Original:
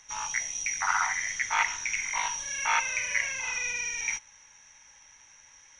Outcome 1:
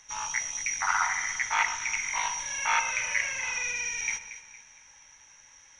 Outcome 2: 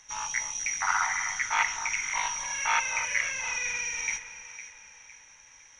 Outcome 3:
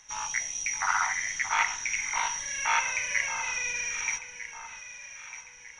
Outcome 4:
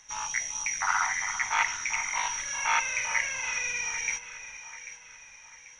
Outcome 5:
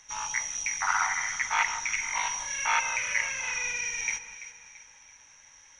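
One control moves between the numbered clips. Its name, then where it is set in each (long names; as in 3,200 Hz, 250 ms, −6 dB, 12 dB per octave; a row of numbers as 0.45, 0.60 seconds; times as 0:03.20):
delay that swaps between a low-pass and a high-pass, delay time: 115, 254, 625, 395, 168 milliseconds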